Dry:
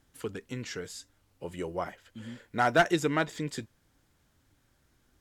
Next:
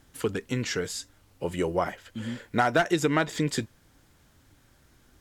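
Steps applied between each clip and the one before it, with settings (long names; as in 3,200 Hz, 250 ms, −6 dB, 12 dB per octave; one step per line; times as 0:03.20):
downward compressor 6 to 1, threshold −28 dBFS, peak gain reduction 10.5 dB
level +8.5 dB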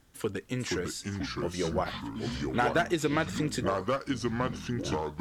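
delay with pitch and tempo change per echo 410 ms, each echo −4 semitones, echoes 3
level −4 dB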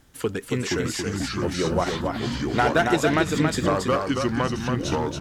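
single-tap delay 277 ms −4.5 dB
level +6 dB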